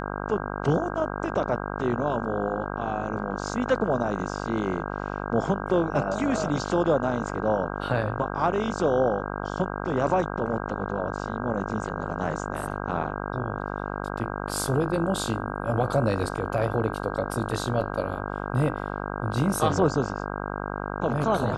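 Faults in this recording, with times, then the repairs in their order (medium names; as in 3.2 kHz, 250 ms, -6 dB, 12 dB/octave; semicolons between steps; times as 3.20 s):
buzz 50 Hz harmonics 32 -32 dBFS
17.81 s: dropout 2.9 ms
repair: de-hum 50 Hz, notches 32; interpolate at 17.81 s, 2.9 ms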